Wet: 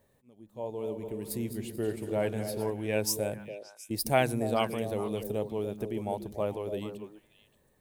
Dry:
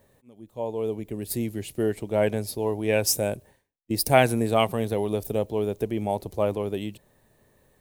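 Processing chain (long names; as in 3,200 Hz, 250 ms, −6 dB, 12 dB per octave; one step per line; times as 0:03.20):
0:00.52–0:02.70: feedback delay that plays each chunk backwards 113 ms, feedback 64%, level −10 dB
echo through a band-pass that steps 144 ms, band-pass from 170 Hz, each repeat 1.4 octaves, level −3.5 dB
level −7 dB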